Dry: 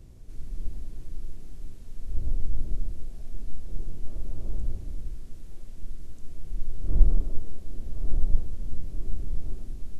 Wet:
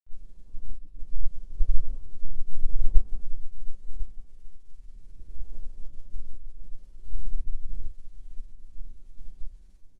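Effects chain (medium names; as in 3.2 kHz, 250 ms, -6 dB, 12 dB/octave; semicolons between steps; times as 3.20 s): reverse the whole clip; peaking EQ 240 Hz -7 dB 2.8 oct; formant-preserving pitch shift -5 st; feedback comb 190 Hz, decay 0.54 s, harmonics all, mix 80%; phase dispersion highs, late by 55 ms, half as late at 350 Hz; granulator, pitch spread up and down by 0 st; delay 1049 ms -8 dB; upward expansion 1.5:1, over -41 dBFS; trim +14 dB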